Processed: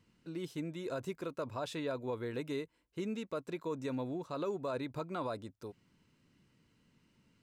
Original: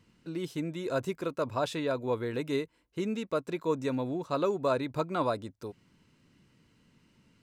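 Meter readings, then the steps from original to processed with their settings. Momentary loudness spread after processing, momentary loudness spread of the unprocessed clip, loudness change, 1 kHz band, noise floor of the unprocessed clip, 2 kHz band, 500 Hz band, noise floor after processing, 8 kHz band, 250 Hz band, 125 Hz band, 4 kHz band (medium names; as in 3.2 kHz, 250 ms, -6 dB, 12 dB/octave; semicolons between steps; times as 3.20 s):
6 LU, 8 LU, -7.5 dB, -8.5 dB, -70 dBFS, -7.0 dB, -7.5 dB, -75 dBFS, -6.0 dB, -6.0 dB, -6.5 dB, -6.5 dB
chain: peak limiter -23 dBFS, peak gain reduction 6.5 dB; trim -5.5 dB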